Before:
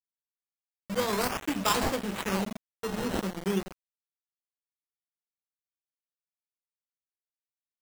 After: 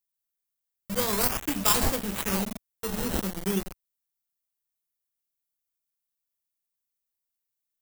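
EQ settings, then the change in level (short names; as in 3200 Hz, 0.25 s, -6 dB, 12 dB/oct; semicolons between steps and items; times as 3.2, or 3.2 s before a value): low shelf 100 Hz +12 dB; high shelf 4400 Hz +6 dB; high shelf 10000 Hz +11 dB; -1.5 dB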